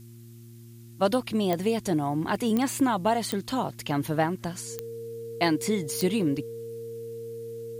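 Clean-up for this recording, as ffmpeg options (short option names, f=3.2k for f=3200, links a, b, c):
-af "adeclick=t=4,bandreject=f=116.3:t=h:w=4,bandreject=f=232.6:t=h:w=4,bandreject=f=348.9:t=h:w=4,bandreject=f=460:w=30,agate=range=-21dB:threshold=-39dB"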